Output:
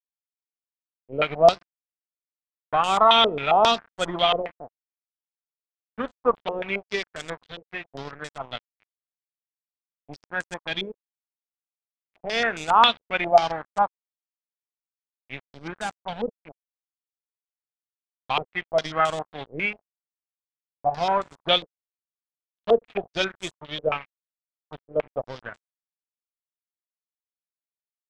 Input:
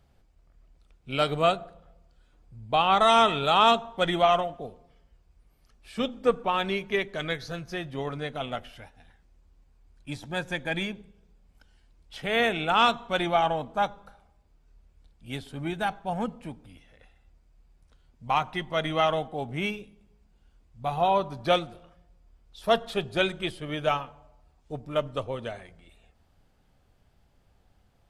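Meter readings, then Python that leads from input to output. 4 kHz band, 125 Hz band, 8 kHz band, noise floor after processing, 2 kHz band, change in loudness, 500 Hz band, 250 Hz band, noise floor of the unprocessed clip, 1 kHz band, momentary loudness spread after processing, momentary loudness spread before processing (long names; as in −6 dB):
+4.0 dB, −5.0 dB, +3.5 dB, below −85 dBFS, +1.5 dB, +3.0 dB, +2.5 dB, −3.0 dB, −64 dBFS, +2.0 dB, 19 LU, 17 LU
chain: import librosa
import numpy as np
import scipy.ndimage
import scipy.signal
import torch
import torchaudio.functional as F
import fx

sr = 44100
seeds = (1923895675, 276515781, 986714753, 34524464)

y = np.sign(x) * np.maximum(np.abs(x) - 10.0 ** (-34.5 / 20.0), 0.0)
y = fx.filter_held_lowpass(y, sr, hz=7.4, low_hz=470.0, high_hz=7700.0)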